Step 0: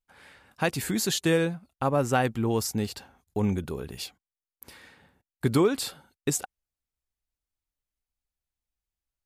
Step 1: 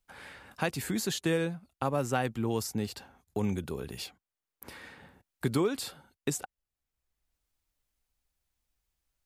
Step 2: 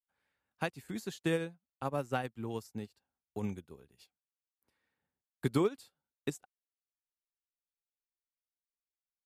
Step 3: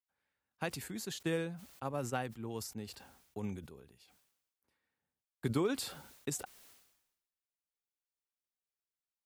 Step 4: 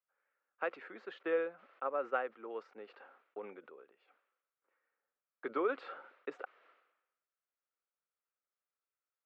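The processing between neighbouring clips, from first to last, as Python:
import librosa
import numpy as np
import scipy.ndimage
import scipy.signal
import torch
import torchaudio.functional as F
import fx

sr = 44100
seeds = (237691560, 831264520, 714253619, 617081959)

y1 = fx.band_squash(x, sr, depth_pct=40)
y1 = y1 * 10.0 ** (-4.5 / 20.0)
y2 = fx.upward_expand(y1, sr, threshold_db=-47.0, expansion=2.5)
y3 = fx.sustainer(y2, sr, db_per_s=63.0)
y3 = y3 * 10.0 ** (-3.5 / 20.0)
y4 = fx.cabinet(y3, sr, low_hz=370.0, low_slope=24, high_hz=2400.0, hz=(520.0, 870.0, 1300.0), db=(6, -3, 10))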